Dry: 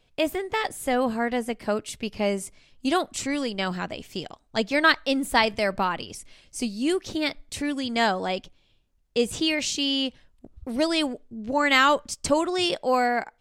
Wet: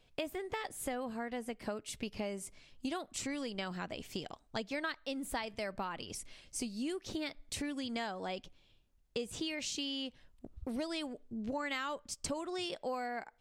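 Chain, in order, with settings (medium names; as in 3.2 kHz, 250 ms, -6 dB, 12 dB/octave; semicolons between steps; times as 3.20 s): compression 6:1, threshold -33 dBFS, peak gain reduction 18 dB; trim -3 dB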